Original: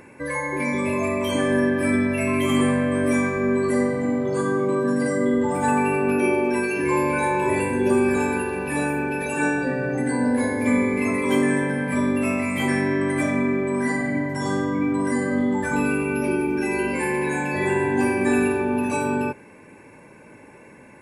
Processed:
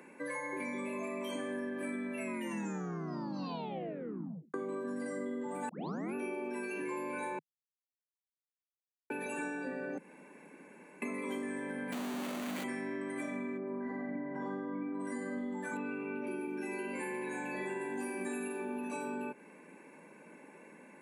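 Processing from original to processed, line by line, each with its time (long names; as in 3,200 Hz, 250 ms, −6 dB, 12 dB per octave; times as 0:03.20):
0:02.21: tape stop 2.33 s
0:05.69: tape start 0.45 s
0:07.39–0:09.10: silence
0:09.98–0:11.02: fill with room tone
0:11.92–0:12.64: comparator with hysteresis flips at −28.5 dBFS
0:13.57–0:14.99: low-pass filter 1,200 Hz → 1,900 Hz
0:15.77–0:16.27: low-pass filter 3,000 Hz
0:17.81–0:18.78: high-shelf EQ 6,900 Hz +11.5 dB
whole clip: Butterworth high-pass 160 Hz 72 dB per octave; notch filter 5,200 Hz, Q 6.7; downward compressor, threshold −28 dBFS; level −8 dB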